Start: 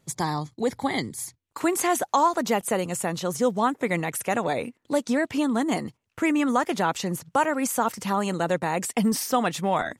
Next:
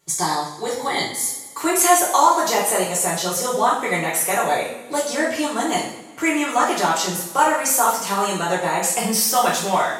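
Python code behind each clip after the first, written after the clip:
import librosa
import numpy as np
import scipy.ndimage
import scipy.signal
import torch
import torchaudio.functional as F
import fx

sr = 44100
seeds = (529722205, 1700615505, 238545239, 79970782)

y = fx.bass_treble(x, sr, bass_db=-12, treble_db=6)
y = fx.rev_double_slope(y, sr, seeds[0], early_s=0.57, late_s=1.8, knee_db=-16, drr_db=-6.5)
y = y * librosa.db_to_amplitude(-1.0)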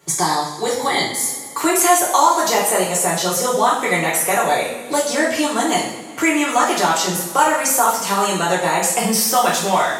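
y = fx.band_squash(x, sr, depth_pct=40)
y = y * librosa.db_to_amplitude(2.5)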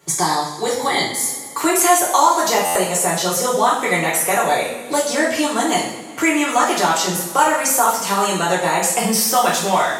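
y = fx.buffer_glitch(x, sr, at_s=(2.65,), block=512, repeats=8)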